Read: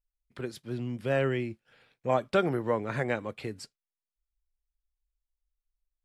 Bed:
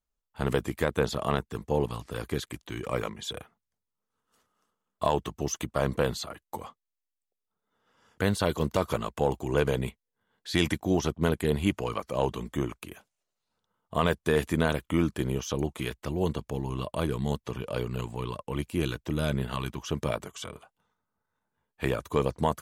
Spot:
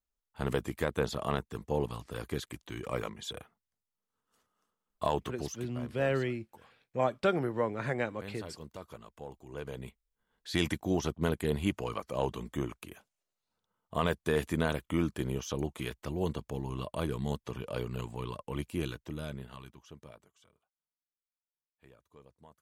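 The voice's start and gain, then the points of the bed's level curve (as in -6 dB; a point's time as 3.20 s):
4.90 s, -2.5 dB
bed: 5.36 s -4.5 dB
5.77 s -19 dB
9.42 s -19 dB
10.32 s -4.5 dB
18.71 s -4.5 dB
20.78 s -31 dB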